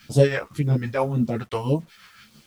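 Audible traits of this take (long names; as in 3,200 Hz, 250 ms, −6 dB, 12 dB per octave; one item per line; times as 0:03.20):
phaser sweep stages 2, 1.8 Hz, lowest notch 210–1,700 Hz
tremolo triangle 6 Hz, depth 65%
a quantiser's noise floor 10 bits, dither none
a shimmering, thickened sound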